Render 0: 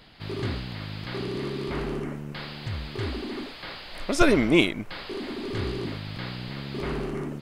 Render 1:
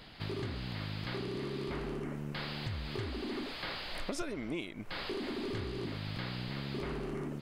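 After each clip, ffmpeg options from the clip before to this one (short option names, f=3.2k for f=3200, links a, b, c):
-af "acompressor=threshold=-34dB:ratio=16"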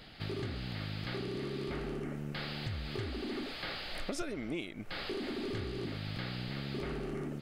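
-af "bandreject=f=1k:w=6.1"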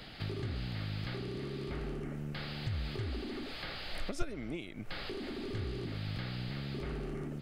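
-filter_complex "[0:a]agate=range=-8dB:threshold=-34dB:ratio=16:detection=peak,acrossover=split=130[a][b];[b]acompressor=threshold=-57dB:ratio=2[c];[a][c]amix=inputs=2:normalize=0,volume=12dB"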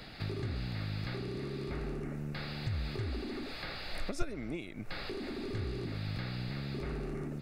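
-af "bandreject=f=3.1k:w=6.5,volume=1dB"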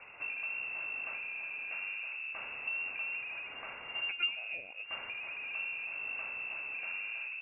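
-af "lowpass=f=2.4k:t=q:w=0.5098,lowpass=f=2.4k:t=q:w=0.6013,lowpass=f=2.4k:t=q:w=0.9,lowpass=f=2.4k:t=q:w=2.563,afreqshift=-2800,volume=-2.5dB"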